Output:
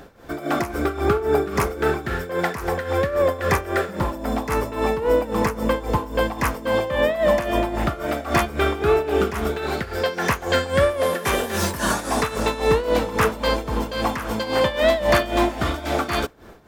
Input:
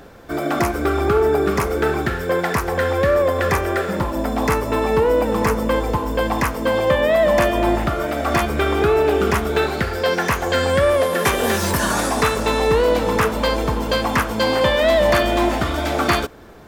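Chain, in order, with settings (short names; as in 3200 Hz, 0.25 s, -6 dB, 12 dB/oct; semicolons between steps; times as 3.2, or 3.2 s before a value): tremolo 3.7 Hz, depth 76%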